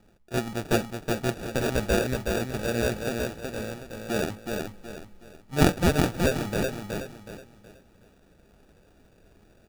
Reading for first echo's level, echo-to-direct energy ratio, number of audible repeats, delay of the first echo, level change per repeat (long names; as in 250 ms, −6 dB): −4.0 dB, −3.5 dB, 4, 371 ms, −9.5 dB